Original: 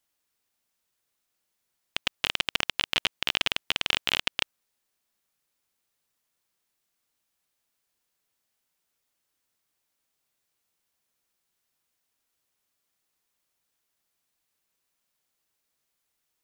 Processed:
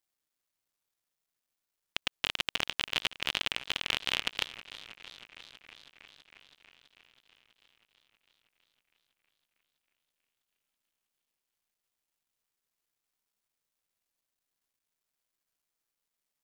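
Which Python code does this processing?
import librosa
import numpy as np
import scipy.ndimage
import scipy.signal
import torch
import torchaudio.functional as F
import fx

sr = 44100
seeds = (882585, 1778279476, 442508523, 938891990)

y = fx.quant_dither(x, sr, seeds[0], bits=12, dither='none')
y = fx.echo_warbled(y, sr, ms=323, feedback_pct=76, rate_hz=2.8, cents=138, wet_db=-17)
y = y * librosa.db_to_amplitude(-4.5)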